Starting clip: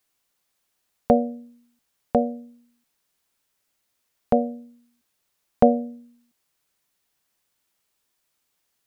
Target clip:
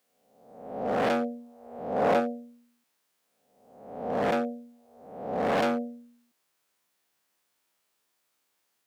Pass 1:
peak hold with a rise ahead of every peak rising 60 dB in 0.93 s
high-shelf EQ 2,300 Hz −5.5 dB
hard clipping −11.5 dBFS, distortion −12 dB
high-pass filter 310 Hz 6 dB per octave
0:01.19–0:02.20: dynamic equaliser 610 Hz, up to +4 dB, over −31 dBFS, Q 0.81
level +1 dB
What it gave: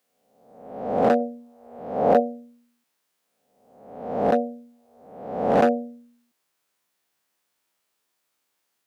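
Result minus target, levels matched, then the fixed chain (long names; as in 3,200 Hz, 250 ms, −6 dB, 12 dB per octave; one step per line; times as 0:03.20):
hard clipping: distortion −8 dB
peak hold with a rise ahead of every peak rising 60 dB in 0.93 s
high-shelf EQ 2,300 Hz −5.5 dB
hard clipping −22.5 dBFS, distortion −3 dB
high-pass filter 310 Hz 6 dB per octave
0:01.19–0:02.20: dynamic equaliser 610 Hz, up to +4 dB, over −31 dBFS, Q 0.81
level +1 dB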